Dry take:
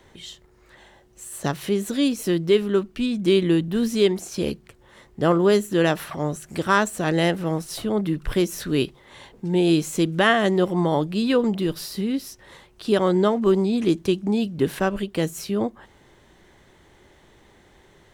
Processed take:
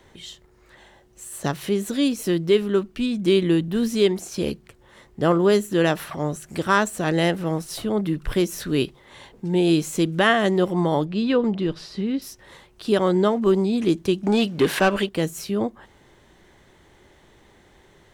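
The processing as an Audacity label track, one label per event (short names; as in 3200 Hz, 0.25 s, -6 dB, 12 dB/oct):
11.050000	12.220000	air absorption 120 m
14.230000	15.090000	overdrive pedal drive 18 dB, tone 5000 Hz, clips at -8 dBFS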